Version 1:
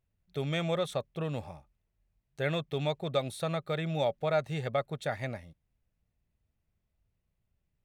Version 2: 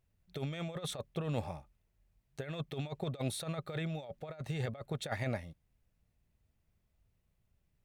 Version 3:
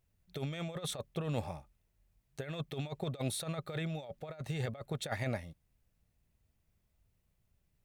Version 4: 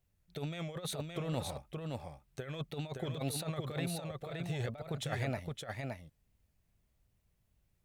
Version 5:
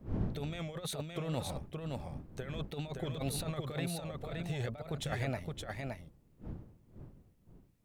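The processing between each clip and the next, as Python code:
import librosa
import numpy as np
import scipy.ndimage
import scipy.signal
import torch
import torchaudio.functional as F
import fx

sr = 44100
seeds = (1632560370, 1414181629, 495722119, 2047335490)

y1 = fx.over_compress(x, sr, threshold_db=-35.0, ratio=-0.5)
y1 = y1 * librosa.db_to_amplitude(-1.5)
y2 = fx.high_shelf(y1, sr, hz=5700.0, db=4.0)
y3 = fx.wow_flutter(y2, sr, seeds[0], rate_hz=2.1, depth_cents=110.0)
y3 = y3 + 10.0 ** (-4.0 / 20.0) * np.pad(y3, (int(568 * sr / 1000.0), 0))[:len(y3)]
y3 = y3 * librosa.db_to_amplitude(-1.0)
y4 = fx.dmg_wind(y3, sr, seeds[1], corner_hz=180.0, level_db=-46.0)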